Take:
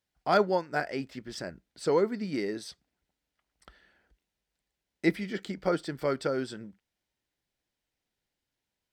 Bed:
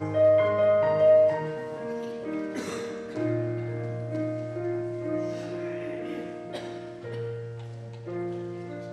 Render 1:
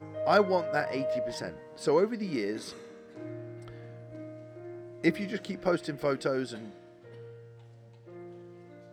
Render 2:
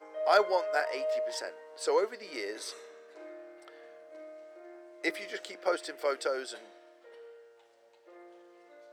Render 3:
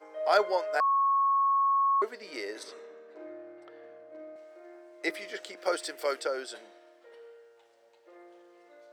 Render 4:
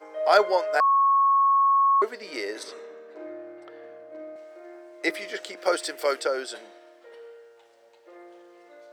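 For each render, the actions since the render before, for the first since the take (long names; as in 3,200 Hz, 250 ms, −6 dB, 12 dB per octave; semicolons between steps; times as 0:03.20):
mix in bed −13.5 dB
high-pass filter 440 Hz 24 dB per octave; dynamic equaliser 8,800 Hz, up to +5 dB, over −55 dBFS, Q 0.71
0:00.80–0:02.02: beep over 1,100 Hz −22 dBFS; 0:02.63–0:04.36: RIAA equalisation playback; 0:05.57–0:06.20: high-shelf EQ 4,000 Hz +8.5 dB
level +5.5 dB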